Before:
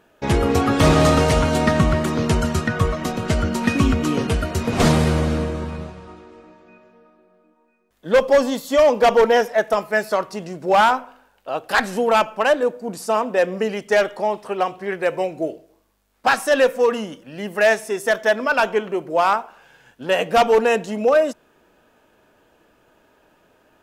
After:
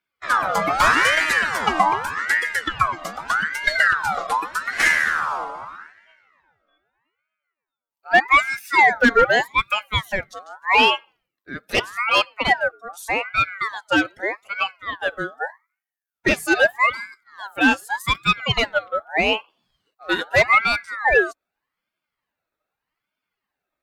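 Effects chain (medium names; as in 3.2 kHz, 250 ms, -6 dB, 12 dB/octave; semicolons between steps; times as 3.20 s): expander on every frequency bin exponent 1.5; ring modulator with a swept carrier 1.4 kHz, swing 35%, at 0.82 Hz; trim +4 dB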